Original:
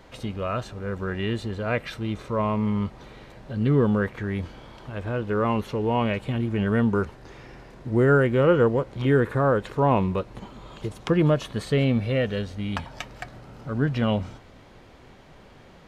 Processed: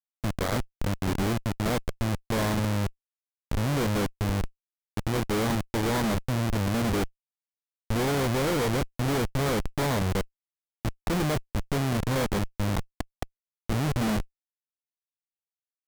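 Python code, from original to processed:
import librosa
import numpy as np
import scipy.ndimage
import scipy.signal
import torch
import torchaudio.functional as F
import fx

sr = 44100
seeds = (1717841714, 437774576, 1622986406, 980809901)

y = fx.schmitt(x, sr, flips_db=-25.5)
y = fx.sample_hold(y, sr, seeds[0], rate_hz=2700.0, jitter_pct=20)
y = fx.vibrato(y, sr, rate_hz=0.74, depth_cents=13.0)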